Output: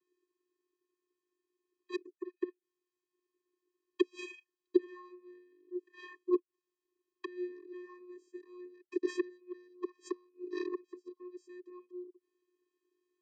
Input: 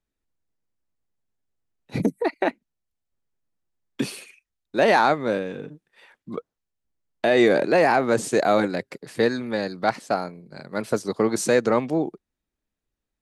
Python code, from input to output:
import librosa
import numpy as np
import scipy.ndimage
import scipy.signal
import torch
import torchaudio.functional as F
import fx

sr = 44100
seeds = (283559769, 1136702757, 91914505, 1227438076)

y = fx.gate_flip(x, sr, shuts_db=-23.0, range_db=-37)
y = fx.vocoder(y, sr, bands=16, carrier='square', carrier_hz=359.0)
y = F.gain(torch.from_numpy(y), 9.0).numpy()